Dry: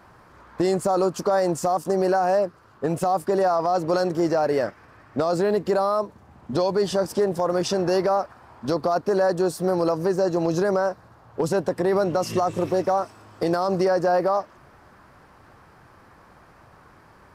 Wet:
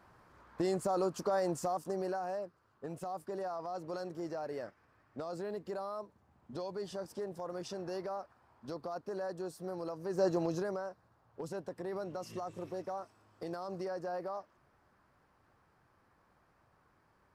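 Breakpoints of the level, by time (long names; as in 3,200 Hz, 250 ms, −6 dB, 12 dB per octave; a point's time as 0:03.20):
0:01.56 −11 dB
0:02.40 −18.5 dB
0:10.04 −18.5 dB
0:10.24 −7 dB
0:10.86 −18.5 dB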